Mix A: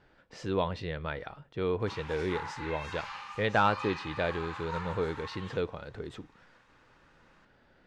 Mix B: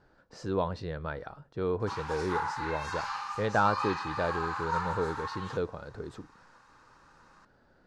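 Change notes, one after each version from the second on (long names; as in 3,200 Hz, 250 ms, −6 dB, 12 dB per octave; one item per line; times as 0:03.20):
background +7.5 dB
master: add flat-topped bell 2,600 Hz −9 dB 1.1 octaves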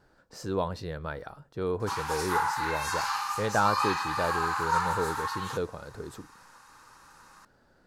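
background +4.5 dB
master: remove high-frequency loss of the air 100 metres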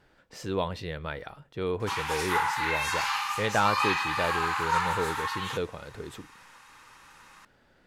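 master: add flat-topped bell 2,600 Hz +9 dB 1.1 octaves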